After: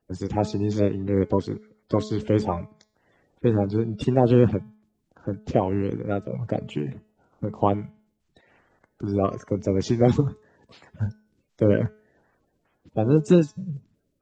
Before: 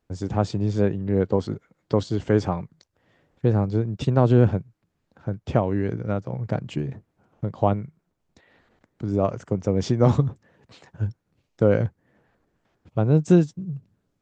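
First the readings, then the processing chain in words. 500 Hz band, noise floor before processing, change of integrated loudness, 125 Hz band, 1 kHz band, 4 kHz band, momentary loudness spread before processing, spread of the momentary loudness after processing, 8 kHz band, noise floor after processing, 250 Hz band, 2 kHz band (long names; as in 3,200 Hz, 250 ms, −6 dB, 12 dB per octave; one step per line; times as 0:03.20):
+0.5 dB, −75 dBFS, −0.5 dB, −2.5 dB, +0.5 dB, −0.5 dB, 14 LU, 14 LU, can't be measured, −73 dBFS, +0.5 dB, −1.5 dB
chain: spectral magnitudes quantised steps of 30 dB
hum removal 214.1 Hz, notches 34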